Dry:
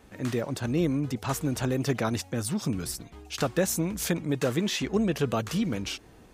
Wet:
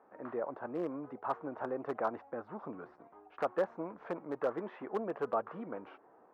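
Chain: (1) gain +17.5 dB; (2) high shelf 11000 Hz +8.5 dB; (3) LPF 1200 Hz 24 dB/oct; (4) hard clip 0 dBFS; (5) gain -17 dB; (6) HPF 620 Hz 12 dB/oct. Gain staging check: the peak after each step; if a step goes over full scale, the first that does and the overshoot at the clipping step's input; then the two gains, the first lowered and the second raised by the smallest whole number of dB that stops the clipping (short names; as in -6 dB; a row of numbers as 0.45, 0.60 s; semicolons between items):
+5.5, +5.5, +4.0, 0.0, -17.0, -19.5 dBFS; step 1, 4.0 dB; step 1 +13.5 dB, step 5 -13 dB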